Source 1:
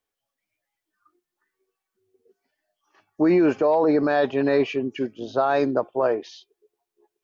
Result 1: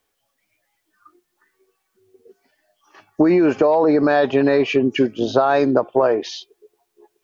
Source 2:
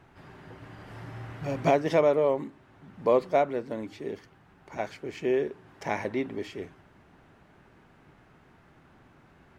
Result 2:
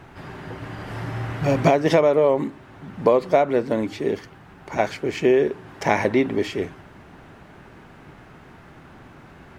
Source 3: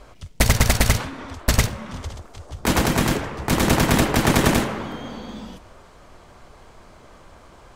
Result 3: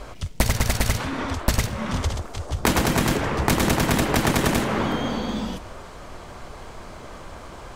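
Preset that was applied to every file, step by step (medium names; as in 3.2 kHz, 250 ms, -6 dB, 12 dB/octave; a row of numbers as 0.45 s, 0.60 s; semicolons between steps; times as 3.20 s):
compression 16:1, threshold -24 dBFS; peak normalisation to -3 dBFS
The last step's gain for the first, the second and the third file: +12.5 dB, +12.0 dB, +8.0 dB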